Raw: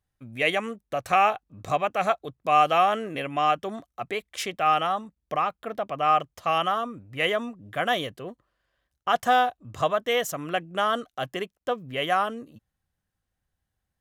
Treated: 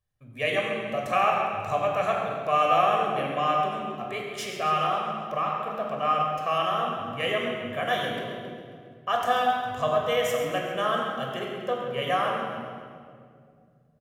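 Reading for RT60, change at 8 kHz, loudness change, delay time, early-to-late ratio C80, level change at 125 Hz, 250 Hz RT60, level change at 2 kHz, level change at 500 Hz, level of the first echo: 2.2 s, -2.5 dB, -1.0 dB, 0.135 s, 1.5 dB, +2.0 dB, 3.2 s, -1.5 dB, +1.0 dB, -10.5 dB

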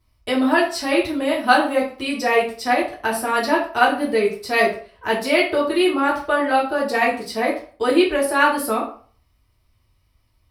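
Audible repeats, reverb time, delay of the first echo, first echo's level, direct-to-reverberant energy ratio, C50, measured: none, 0.45 s, none, none, -5.0 dB, 7.5 dB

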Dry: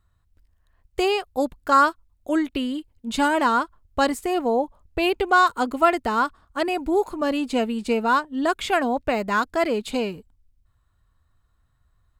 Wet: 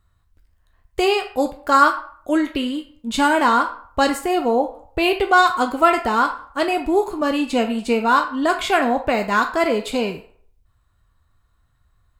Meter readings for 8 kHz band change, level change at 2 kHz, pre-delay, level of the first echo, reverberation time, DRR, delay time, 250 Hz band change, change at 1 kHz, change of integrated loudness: +4.0 dB, +4.0 dB, 9 ms, none, 0.55 s, 4.0 dB, none, +3.0 dB, +4.0 dB, +3.5 dB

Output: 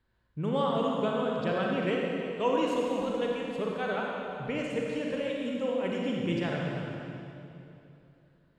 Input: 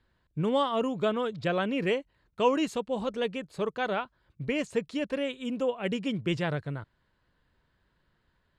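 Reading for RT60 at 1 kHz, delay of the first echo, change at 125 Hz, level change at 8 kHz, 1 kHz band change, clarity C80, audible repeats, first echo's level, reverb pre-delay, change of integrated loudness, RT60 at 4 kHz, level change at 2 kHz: 2.7 s, none, 0.0 dB, -3.0 dB, -1.0 dB, 0.0 dB, none, none, 36 ms, -0.5 dB, 2.5 s, -1.0 dB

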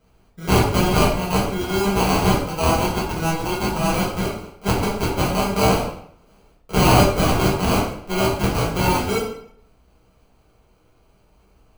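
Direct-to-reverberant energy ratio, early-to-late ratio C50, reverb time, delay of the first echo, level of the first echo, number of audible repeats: -5.0 dB, 4.0 dB, 0.65 s, none, none, none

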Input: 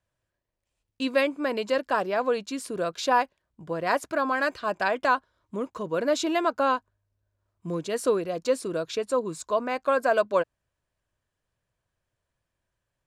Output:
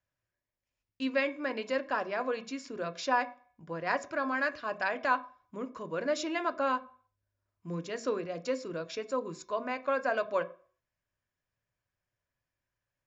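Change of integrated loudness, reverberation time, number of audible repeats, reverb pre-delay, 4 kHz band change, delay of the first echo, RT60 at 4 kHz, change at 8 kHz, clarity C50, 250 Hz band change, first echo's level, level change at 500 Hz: -6.5 dB, 0.45 s, none, 3 ms, -7.0 dB, none, 0.45 s, -8.5 dB, 18.0 dB, -6.0 dB, none, -7.5 dB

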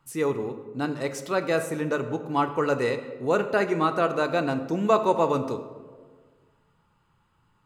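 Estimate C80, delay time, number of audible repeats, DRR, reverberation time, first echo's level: 12.0 dB, none, none, 8.0 dB, 1.6 s, none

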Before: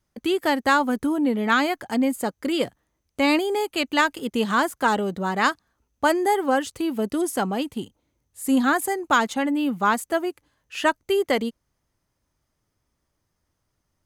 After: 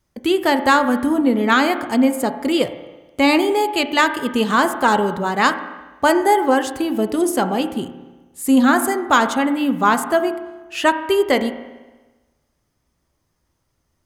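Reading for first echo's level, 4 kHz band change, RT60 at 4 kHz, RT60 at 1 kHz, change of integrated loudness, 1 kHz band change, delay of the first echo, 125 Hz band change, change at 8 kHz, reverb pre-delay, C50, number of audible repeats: none, +5.0 dB, 1.2 s, 1.2 s, +5.5 dB, +5.5 dB, none, +4.0 dB, +5.0 dB, 6 ms, 11.0 dB, none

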